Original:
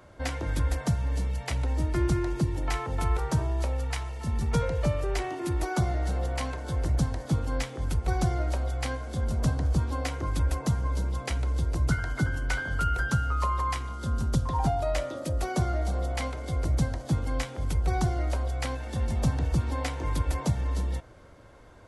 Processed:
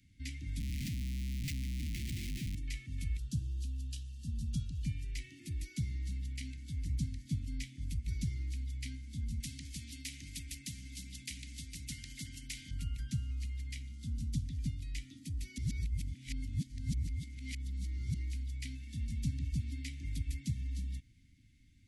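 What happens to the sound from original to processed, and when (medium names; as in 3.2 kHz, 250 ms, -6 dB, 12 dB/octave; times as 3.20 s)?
0.60–2.55 s: Schmitt trigger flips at -37 dBFS
3.18–4.85 s: Butterworth band-stop 2.1 kHz, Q 1.7
9.40–12.71 s: spectrum-flattening compressor 2:1
15.58–18.14 s: reverse
whole clip: Chebyshev band-stop 270–2100 Hz, order 4; trim -9 dB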